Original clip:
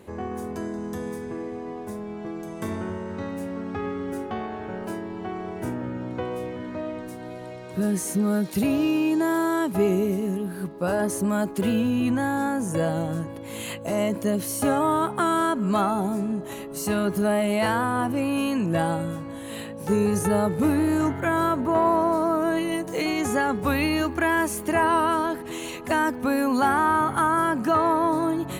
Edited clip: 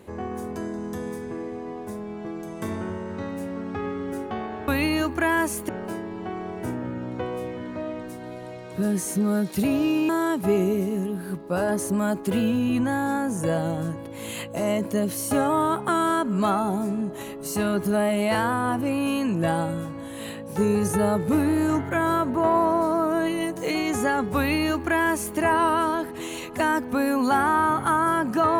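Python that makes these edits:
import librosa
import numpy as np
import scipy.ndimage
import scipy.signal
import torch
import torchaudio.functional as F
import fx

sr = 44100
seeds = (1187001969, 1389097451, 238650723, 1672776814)

y = fx.edit(x, sr, fx.cut(start_s=9.08, length_s=0.32),
    fx.duplicate(start_s=23.68, length_s=1.01, to_s=4.68), tone=tone)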